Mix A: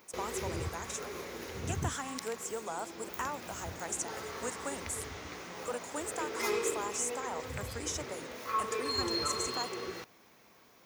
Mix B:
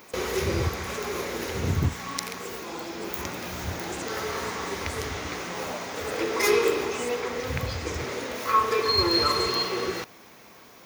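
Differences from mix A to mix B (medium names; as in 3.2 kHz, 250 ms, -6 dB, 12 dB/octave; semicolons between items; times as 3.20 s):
speech -7.5 dB; background +11.0 dB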